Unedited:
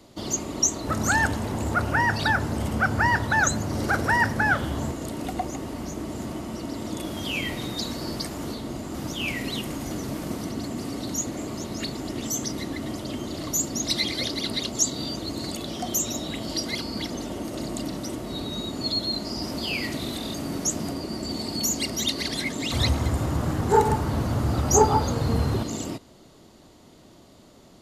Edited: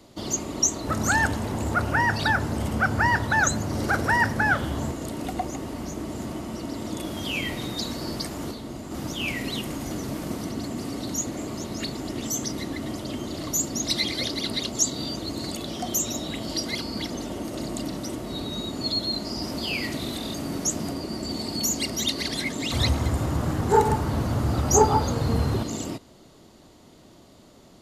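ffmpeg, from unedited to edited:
ffmpeg -i in.wav -filter_complex "[0:a]asplit=3[link_01][link_02][link_03];[link_01]atrim=end=8.512[link_04];[link_02]atrim=start=8.508:end=8.912,asetpts=PTS-STARTPTS,volume=-3dB[link_05];[link_03]atrim=start=8.908[link_06];[link_04][link_05]acrossfade=duration=0.004:curve1=hsin:curve2=hsin[link_07];[link_07][link_06]acrossfade=duration=0.004:curve1=hsin:curve2=hsin" out.wav

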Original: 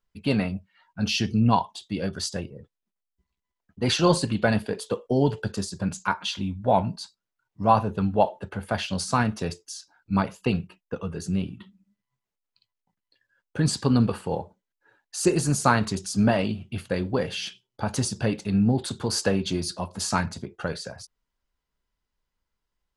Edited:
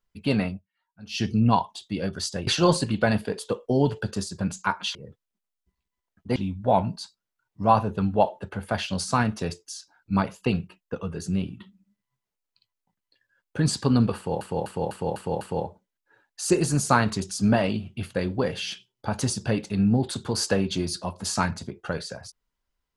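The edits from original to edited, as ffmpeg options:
ffmpeg -i in.wav -filter_complex "[0:a]asplit=11[link_01][link_02][link_03][link_04][link_05][link_06][link_07][link_08][link_09][link_10][link_11];[link_01]atrim=end=0.62,asetpts=PTS-STARTPTS,afade=type=out:start_time=0.48:duration=0.14:silence=0.125893[link_12];[link_02]atrim=start=0.62:end=1.09,asetpts=PTS-STARTPTS,volume=-18dB[link_13];[link_03]atrim=start=1.09:end=2.472,asetpts=PTS-STARTPTS,afade=type=in:duration=0.14:silence=0.125893[link_14];[link_04]atrim=start=3.878:end=6.362[link_15];[link_05]atrim=start=2.468:end=3.882[link_16];[link_06]atrim=start=6.358:end=14.412[link_17];[link_07]atrim=start=14.158:end=14.412[link_18];[link_08]atrim=start=14.158:end=14.412[link_19];[link_09]atrim=start=14.158:end=14.412[link_20];[link_10]atrim=start=14.158:end=14.412[link_21];[link_11]atrim=start=14.158[link_22];[link_12][link_13][link_14]concat=n=3:v=0:a=1[link_23];[link_23][link_15]acrossfade=duration=0.004:curve1=hsin:curve2=hsin[link_24];[link_24][link_16]acrossfade=duration=0.004:curve1=hsin:curve2=hsin[link_25];[link_25][link_17]acrossfade=duration=0.004:curve1=hsin:curve2=hsin[link_26];[link_26][link_18]acrossfade=duration=0.004:curve1=hsin:curve2=hsin[link_27];[link_27][link_19]acrossfade=duration=0.004:curve1=hsin:curve2=hsin[link_28];[link_28][link_20]acrossfade=duration=0.004:curve1=hsin:curve2=hsin[link_29];[link_29][link_21]acrossfade=duration=0.004:curve1=hsin:curve2=hsin[link_30];[link_30][link_22]acrossfade=duration=0.004:curve1=hsin:curve2=hsin" out.wav

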